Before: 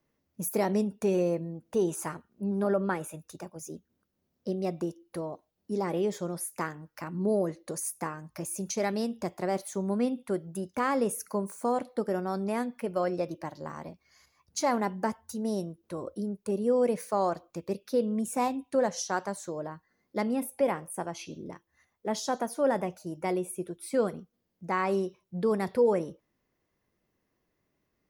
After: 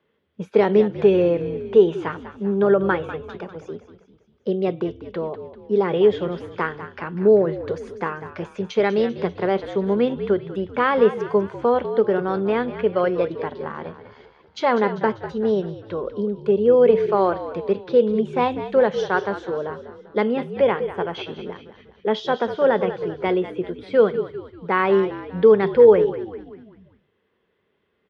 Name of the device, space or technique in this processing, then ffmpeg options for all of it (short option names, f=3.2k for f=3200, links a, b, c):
frequency-shifting delay pedal into a guitar cabinet: -filter_complex "[0:a]asplit=6[a][b][c][d][e][f];[b]adelay=196,afreqshift=-58,volume=-12dB[g];[c]adelay=392,afreqshift=-116,volume=-17.7dB[h];[d]adelay=588,afreqshift=-174,volume=-23.4dB[i];[e]adelay=784,afreqshift=-232,volume=-29dB[j];[f]adelay=980,afreqshift=-290,volume=-34.7dB[k];[a][g][h][i][j][k]amix=inputs=6:normalize=0,highpass=86,equalizer=f=130:t=q:w=4:g=-9,equalizer=f=290:t=q:w=4:g=-8,equalizer=f=430:t=q:w=4:g=9,equalizer=f=670:t=q:w=4:g=-4,equalizer=f=1.5k:t=q:w=4:g=4,equalizer=f=3.3k:t=q:w=4:g=10,lowpass=f=3.4k:w=0.5412,lowpass=f=3.4k:w=1.3066,volume=8dB"